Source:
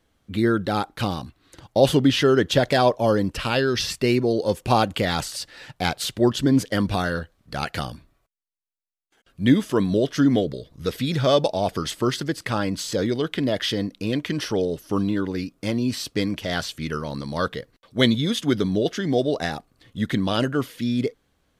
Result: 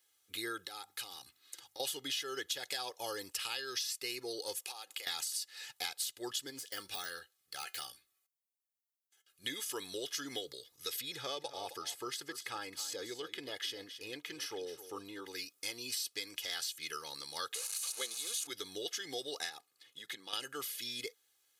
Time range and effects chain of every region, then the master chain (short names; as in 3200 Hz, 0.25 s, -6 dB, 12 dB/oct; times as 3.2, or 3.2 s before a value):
0.66–1.8 notches 50/100/150/200/250 Hz + compressor 5:1, threshold -32 dBFS
4.56–5.07 HPF 460 Hz + compressor 10:1, threshold -32 dBFS
6.5–9.44 de-esser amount 75% + Butterworth band-stop 1000 Hz, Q 6.8 + resonator 190 Hz, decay 0.21 s, mix 50%
11.01–15.26 high shelf 2200 Hz -11 dB + echo 0.265 s -14 dB
17.54–18.47 switching spikes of -12.5 dBFS + speaker cabinet 360–8400 Hz, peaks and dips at 510 Hz +5 dB, 1100 Hz +4 dB, 1900 Hz -9 dB, 3300 Hz -9 dB, 5300 Hz -9 dB, 7700 Hz -9 dB
19.49–20.33 HPF 130 Hz 24 dB/oct + high shelf 6100 Hz -8 dB + compressor 3:1, threshold -30 dBFS
whole clip: differentiator; comb 2.4 ms, depth 68%; compressor, threshold -38 dBFS; gain +2.5 dB